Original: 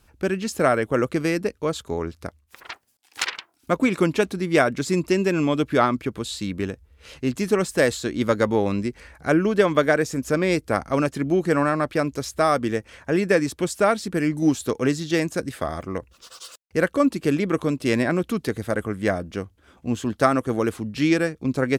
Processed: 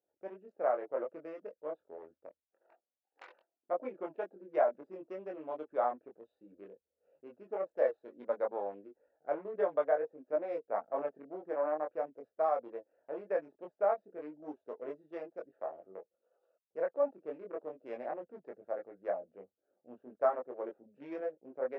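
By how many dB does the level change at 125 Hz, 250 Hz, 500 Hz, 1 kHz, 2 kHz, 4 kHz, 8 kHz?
below −35 dB, −27.0 dB, −11.5 dB, −12.0 dB, −24.0 dB, below −35 dB, below −40 dB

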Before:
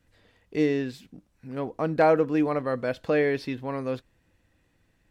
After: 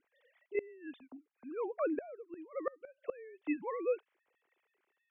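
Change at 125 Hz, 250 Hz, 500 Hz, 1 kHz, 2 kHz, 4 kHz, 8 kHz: below −35 dB, −14.0 dB, −12.5 dB, −16.0 dB, −16.0 dB, below −25 dB, can't be measured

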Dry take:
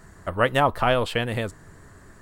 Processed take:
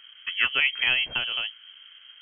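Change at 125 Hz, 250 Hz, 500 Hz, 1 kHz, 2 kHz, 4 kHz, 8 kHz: −23.5 dB, −20.5 dB, −23.0 dB, −15.5 dB, +4.0 dB, +8.5 dB, below −35 dB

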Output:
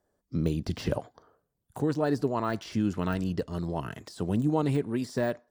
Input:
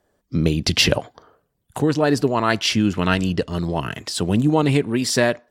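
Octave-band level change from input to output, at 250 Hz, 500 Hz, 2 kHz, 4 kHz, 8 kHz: −8.5, −9.0, −16.5, −22.0, −21.0 decibels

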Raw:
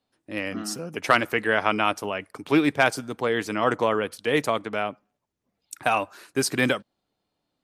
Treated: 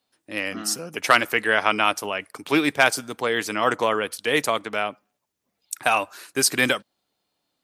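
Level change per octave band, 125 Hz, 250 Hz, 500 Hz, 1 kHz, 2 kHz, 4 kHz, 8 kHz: −4.0, −1.5, 0.0, +2.0, +3.5, +5.5, +8.0 decibels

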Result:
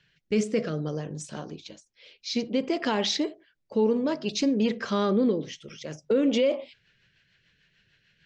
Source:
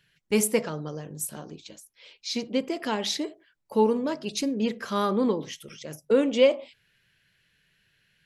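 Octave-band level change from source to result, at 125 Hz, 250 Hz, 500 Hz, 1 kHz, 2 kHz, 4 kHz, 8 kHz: +3.0, +1.5, −1.5, −3.0, −0.5, +0.5, −6.0 decibels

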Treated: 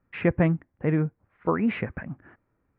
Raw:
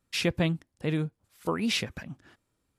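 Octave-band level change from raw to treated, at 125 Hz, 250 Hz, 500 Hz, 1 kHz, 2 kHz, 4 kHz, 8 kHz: +5.0 dB, +5.0 dB, +5.0 dB, +5.0 dB, +0.5 dB, −17.5 dB, below −40 dB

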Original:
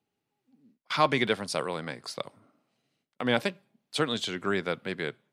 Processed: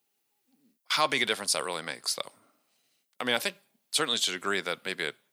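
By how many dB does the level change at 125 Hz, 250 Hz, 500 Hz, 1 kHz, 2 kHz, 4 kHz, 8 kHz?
−10.5, −7.0, −4.0, −1.5, +1.5, +5.0, +11.0 decibels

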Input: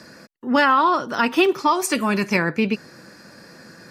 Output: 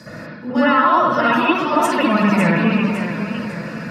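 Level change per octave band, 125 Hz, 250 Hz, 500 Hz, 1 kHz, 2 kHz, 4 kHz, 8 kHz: +9.0, +6.0, +3.0, +3.5, +2.5, +0.5, −5.0 decibels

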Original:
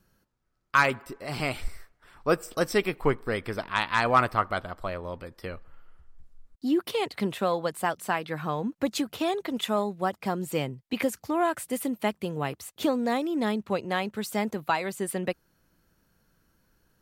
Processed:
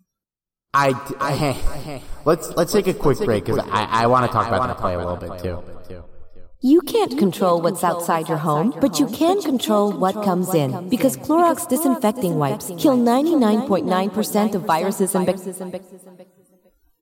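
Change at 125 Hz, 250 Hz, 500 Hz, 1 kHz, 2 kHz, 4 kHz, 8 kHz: +11.0, +11.5, +10.0, +8.5, +0.5, +5.5, +11.0 decibels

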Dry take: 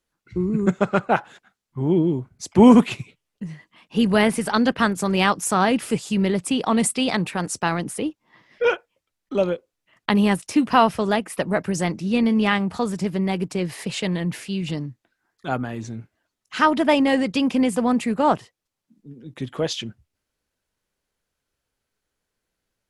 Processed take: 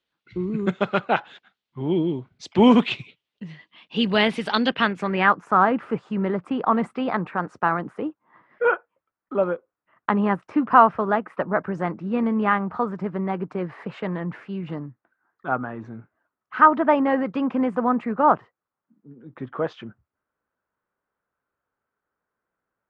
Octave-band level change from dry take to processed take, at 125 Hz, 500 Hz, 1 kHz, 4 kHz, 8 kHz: −5.0 dB, −1.5 dB, +2.5 dB, −3.0 dB, below −20 dB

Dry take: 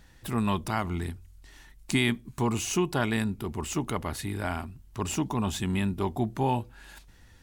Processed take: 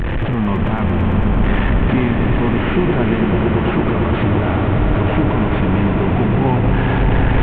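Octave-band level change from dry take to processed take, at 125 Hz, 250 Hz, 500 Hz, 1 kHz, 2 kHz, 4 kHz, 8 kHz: +16.5 dB, +14.0 dB, +14.0 dB, +11.5 dB, +12.0 dB, +5.0 dB, below −30 dB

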